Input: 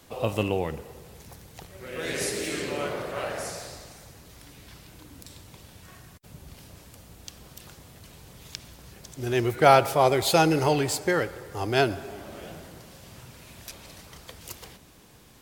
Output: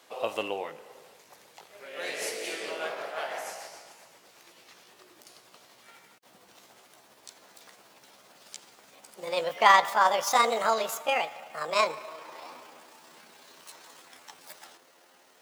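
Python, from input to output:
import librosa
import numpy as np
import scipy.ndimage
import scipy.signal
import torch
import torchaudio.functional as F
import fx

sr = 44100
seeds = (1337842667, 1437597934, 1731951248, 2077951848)

y = fx.pitch_glide(x, sr, semitones=10.0, runs='starting unshifted')
y = scipy.signal.sosfilt(scipy.signal.butter(2, 520.0, 'highpass', fs=sr, output='sos'), y)
y = fx.high_shelf(y, sr, hz=7900.0, db=-9.0)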